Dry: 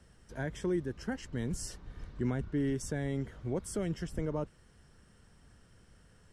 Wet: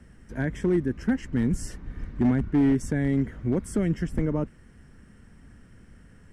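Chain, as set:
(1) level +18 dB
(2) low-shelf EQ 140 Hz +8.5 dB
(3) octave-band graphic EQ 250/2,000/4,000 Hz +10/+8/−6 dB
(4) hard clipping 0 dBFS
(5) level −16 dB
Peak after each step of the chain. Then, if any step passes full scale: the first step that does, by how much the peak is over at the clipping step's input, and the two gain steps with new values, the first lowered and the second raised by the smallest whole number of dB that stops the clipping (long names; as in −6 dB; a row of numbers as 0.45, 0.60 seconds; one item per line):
−3.5, +0.5, +5.0, 0.0, −16.0 dBFS
step 2, 5.0 dB
step 1 +13 dB, step 5 −11 dB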